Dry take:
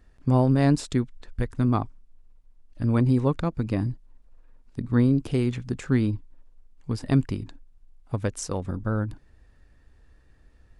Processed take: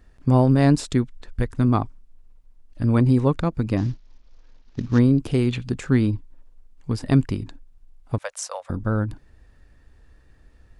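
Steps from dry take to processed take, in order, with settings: 3.77–4.99 CVSD 32 kbps; 5.48–5.71 spectral gain 2300–4800 Hz +7 dB; 8.18–8.7 elliptic high-pass 560 Hz, stop band 40 dB; gain +3.5 dB

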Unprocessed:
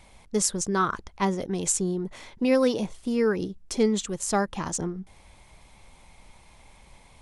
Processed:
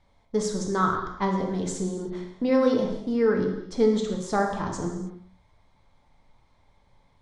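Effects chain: LPF 3800 Hz 12 dB/oct; de-hum 60.44 Hz, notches 37; gate -41 dBFS, range -10 dB; bell 2600 Hz -12.5 dB 0.41 oct; non-linear reverb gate 0.34 s falling, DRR 1.5 dB

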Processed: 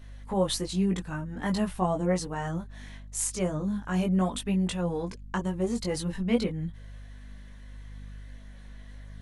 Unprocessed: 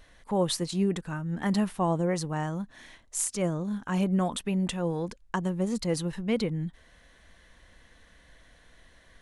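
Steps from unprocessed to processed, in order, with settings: hum 50 Hz, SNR 18 dB; chorus voices 4, 0.42 Hz, delay 19 ms, depth 2.7 ms; gain +3 dB

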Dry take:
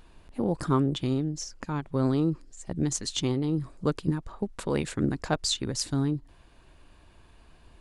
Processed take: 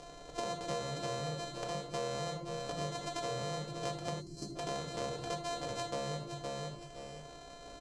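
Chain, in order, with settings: sample sorter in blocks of 128 samples; graphic EQ 250/500/2000 Hz -9/+11/-6 dB; feedback echo 0.515 s, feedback 20%, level -14 dB; shoebox room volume 360 m³, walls furnished, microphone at 1.8 m; compressor 4:1, threshold -36 dBFS, peak gain reduction 17.5 dB; HPF 120 Hz 6 dB/oct; spectral gain 4.21–4.56, 410–4100 Hz -17 dB; LPF 7500 Hz 24 dB/oct; high shelf 5200 Hz +9 dB; comb 6.8 ms, depth 45%; three-band squash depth 40%; gain -1.5 dB

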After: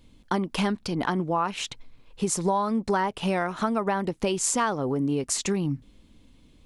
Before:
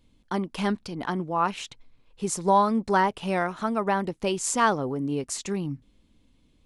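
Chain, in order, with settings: compressor 6:1, threshold -29 dBFS, peak gain reduction 13.5 dB; gain +7 dB

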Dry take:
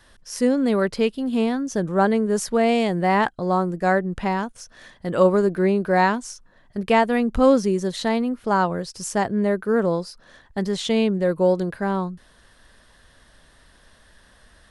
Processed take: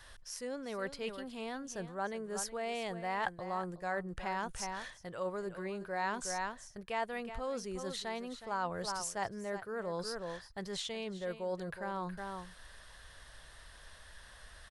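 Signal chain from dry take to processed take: echo 0.368 s -14 dB; reverse; compressor 6:1, threshold -31 dBFS, peak gain reduction 19 dB; reverse; bell 250 Hz -12.5 dB 1.5 oct

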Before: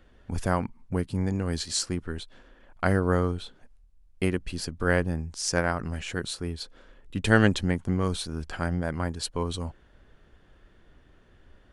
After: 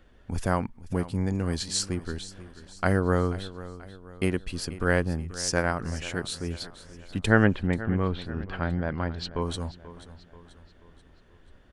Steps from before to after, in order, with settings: 7.25–9.41 LPF 2200 Hz -> 5100 Hz 24 dB/oct; feedback echo 0.485 s, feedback 47%, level -16 dB

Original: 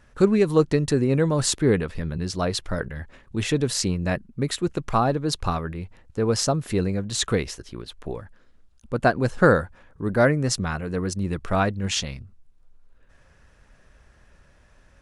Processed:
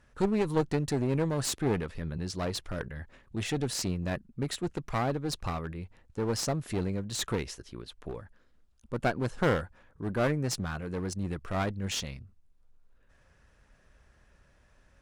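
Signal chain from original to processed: one-sided clip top -25 dBFS; gain -6.5 dB

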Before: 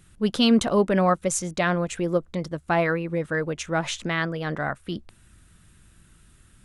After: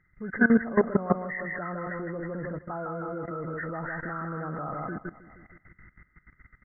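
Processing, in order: nonlinear frequency compression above 1200 Hz 4:1; feedback echo 0.158 s, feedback 48%, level -6 dB; level quantiser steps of 17 dB

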